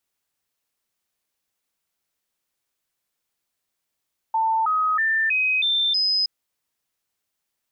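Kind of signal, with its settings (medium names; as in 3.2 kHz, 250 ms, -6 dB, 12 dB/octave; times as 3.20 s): stepped sine 892 Hz up, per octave 2, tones 6, 0.32 s, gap 0.00 s -18 dBFS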